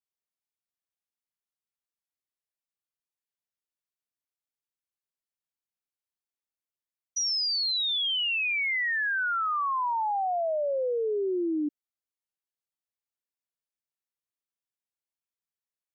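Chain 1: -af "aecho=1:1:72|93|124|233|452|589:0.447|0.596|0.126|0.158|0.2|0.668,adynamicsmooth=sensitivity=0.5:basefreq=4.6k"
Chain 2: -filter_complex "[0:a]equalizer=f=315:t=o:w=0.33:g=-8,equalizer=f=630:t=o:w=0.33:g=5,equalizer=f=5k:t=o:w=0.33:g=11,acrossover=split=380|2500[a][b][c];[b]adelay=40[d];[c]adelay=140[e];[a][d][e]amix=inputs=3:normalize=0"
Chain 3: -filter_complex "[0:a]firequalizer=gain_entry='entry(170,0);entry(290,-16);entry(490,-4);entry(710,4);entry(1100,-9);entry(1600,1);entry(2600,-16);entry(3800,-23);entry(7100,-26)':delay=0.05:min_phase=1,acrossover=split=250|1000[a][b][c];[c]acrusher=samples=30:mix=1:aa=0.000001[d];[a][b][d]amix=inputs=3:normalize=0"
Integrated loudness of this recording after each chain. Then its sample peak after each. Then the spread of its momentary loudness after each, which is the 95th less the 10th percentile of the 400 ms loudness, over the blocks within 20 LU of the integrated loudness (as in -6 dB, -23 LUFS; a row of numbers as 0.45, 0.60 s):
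-25.0, -24.0, -32.5 LUFS; -15.5, -14.0, -21.0 dBFS; 9, 16, 22 LU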